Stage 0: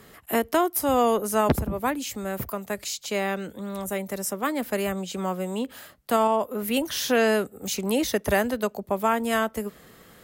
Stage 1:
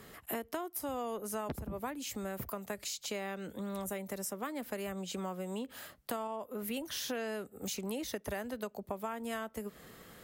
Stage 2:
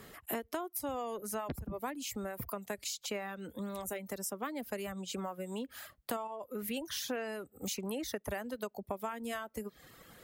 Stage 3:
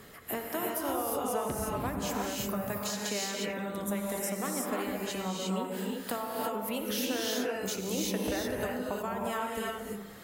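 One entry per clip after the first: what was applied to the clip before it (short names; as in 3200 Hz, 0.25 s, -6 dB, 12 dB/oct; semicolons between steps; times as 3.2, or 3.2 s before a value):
compressor 6:1, threshold -33 dBFS, peak gain reduction 16 dB; gain -3 dB
reverb removal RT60 1 s; gain +1 dB
analogue delay 64 ms, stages 1024, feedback 76%, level -13 dB; non-linear reverb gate 0.38 s rising, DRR -2.5 dB; warbling echo 94 ms, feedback 33%, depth 160 cents, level -19 dB; gain +1.5 dB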